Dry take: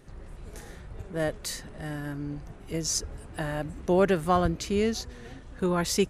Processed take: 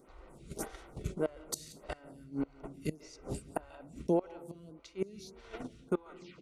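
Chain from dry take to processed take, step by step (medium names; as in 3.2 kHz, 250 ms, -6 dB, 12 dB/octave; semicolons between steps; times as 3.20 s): tape stop on the ending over 0.32 s; high-pass 76 Hz 6 dB/octave; gate -42 dBFS, range -16 dB; peaking EQ 100 Hz -13 dB 0.48 oct; peak limiter -19 dBFS, peak gain reduction 8.5 dB; reverse; compression 8:1, threshold -37 dBFS, peak gain reduction 13.5 dB; reverse; inverted gate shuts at -32 dBFS, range -25 dB; tape speed -5%; Butterworth band-stop 1.7 kHz, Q 6.2; delay 180 ms -22.5 dB; on a send at -17 dB: reverberation RT60 1.1 s, pre-delay 139 ms; on the sum: lamp-driven phase shifter 1.7 Hz; trim +15 dB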